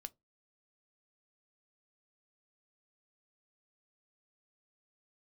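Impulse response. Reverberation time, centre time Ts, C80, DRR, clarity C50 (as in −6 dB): 0.20 s, 2 ms, 38.0 dB, 11.0 dB, 29.0 dB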